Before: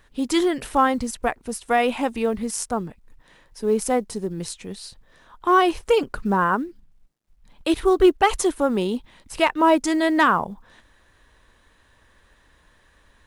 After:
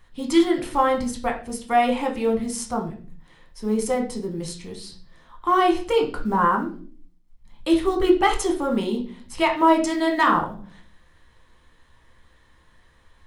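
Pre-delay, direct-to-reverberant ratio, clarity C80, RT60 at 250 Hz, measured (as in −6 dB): 6 ms, 1.0 dB, 14.5 dB, 0.75 s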